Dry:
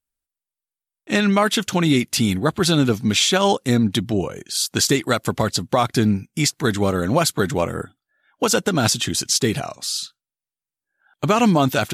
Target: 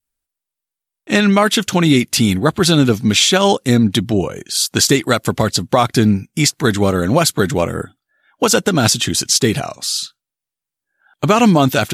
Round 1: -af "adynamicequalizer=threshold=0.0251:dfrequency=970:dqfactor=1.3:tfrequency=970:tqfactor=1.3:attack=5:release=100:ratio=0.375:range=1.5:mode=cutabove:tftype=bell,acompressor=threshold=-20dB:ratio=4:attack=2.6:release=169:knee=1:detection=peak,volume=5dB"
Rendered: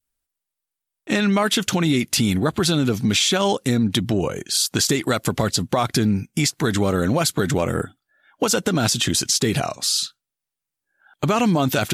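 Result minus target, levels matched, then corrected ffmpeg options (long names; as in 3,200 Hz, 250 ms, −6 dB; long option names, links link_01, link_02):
downward compressor: peak gain reduction +9 dB
-af "adynamicequalizer=threshold=0.0251:dfrequency=970:dqfactor=1.3:tfrequency=970:tqfactor=1.3:attack=5:release=100:ratio=0.375:range=1.5:mode=cutabove:tftype=bell,volume=5dB"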